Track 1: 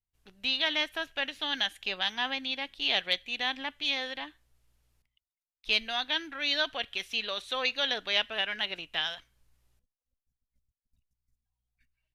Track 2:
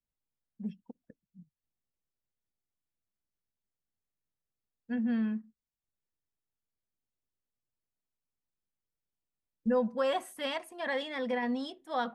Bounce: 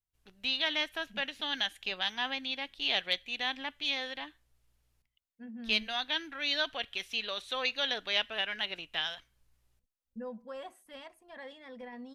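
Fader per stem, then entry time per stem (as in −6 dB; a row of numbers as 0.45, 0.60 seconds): −2.5, −13.5 decibels; 0.00, 0.50 seconds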